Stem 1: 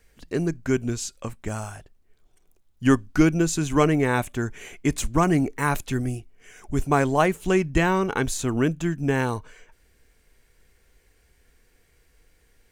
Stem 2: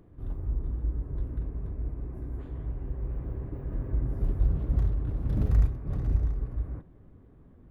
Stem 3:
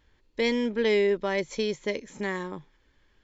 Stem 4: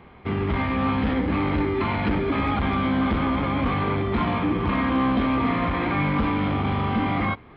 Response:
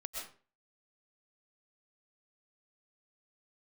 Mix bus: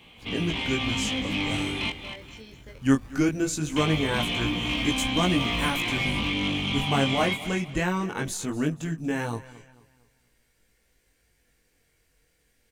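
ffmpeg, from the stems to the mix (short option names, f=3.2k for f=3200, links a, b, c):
-filter_complex "[0:a]equalizer=f=1.1k:t=o:w=1.6:g=-4,volume=0.5dB,asplit=3[a][b][c];[b]volume=-18.5dB[d];[1:a]acrusher=samples=30:mix=1:aa=0.000001:lfo=1:lforange=18:lforate=1.1,volume=-5.5dB[e];[2:a]alimiter=limit=-22.5dB:level=0:latency=1:release=158,adelay=800,volume=-9.5dB[f];[3:a]highshelf=f=2.1k:t=q:w=3:g=11.5,asoftclip=type=tanh:threshold=-15dB,volume=-2.5dB,asplit=3[g][h][i];[g]atrim=end=1.9,asetpts=PTS-STARTPTS,afade=t=out:st=1.896:d=0.004:c=hsin[j];[h]atrim=start=1.9:end=3.76,asetpts=PTS-STARTPTS,volume=0[k];[i]atrim=start=3.76,asetpts=PTS-STARTPTS,afade=t=in:d=0.004:c=hsin[l];[j][k][l]concat=n=3:v=0:a=1,asplit=2[m][n];[n]volume=-9dB[o];[c]apad=whole_len=177901[p];[f][p]sidechaincompress=threshold=-28dB:ratio=8:attack=16:release=1330[q];[d][o]amix=inputs=2:normalize=0,aecho=0:1:238|476|714|952|1190:1|0.36|0.13|0.0467|0.0168[r];[a][e][q][m][r]amix=inputs=5:normalize=0,equalizer=f=390:t=o:w=0.23:g=-7,flanger=delay=16.5:depth=6:speed=0.2,lowshelf=f=75:g=-10.5"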